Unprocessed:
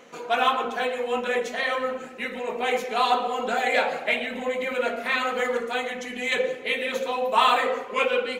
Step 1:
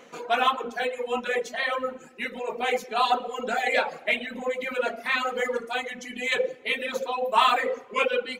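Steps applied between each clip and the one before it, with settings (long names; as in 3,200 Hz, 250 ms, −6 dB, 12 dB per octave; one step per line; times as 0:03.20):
reverb reduction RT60 1.6 s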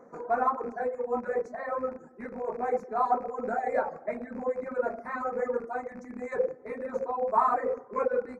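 loose part that buzzes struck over −47 dBFS, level −23 dBFS
Butterworth band-reject 3,100 Hz, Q 0.58
head-to-tape spacing loss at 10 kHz 25 dB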